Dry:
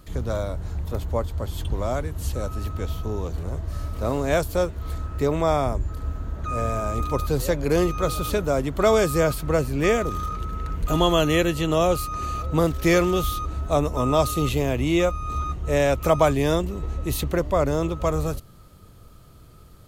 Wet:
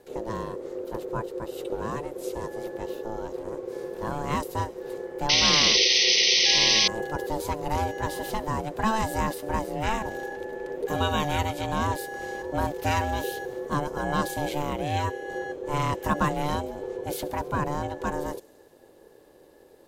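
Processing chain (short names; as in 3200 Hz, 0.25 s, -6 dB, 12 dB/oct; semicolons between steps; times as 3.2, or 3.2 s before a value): thin delay 68 ms, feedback 77%, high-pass 2800 Hz, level -20 dB; painted sound noise, 5.29–6.88, 2300–5800 Hz -14 dBFS; ring modulator 440 Hz; gain -3.5 dB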